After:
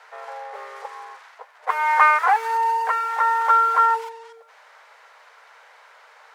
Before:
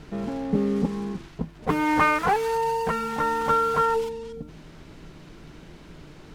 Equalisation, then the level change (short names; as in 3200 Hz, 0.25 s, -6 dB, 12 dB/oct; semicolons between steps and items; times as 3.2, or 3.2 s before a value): steep high-pass 480 Hz 72 dB/oct; band shelf 1300 Hz +9 dB; -2.5 dB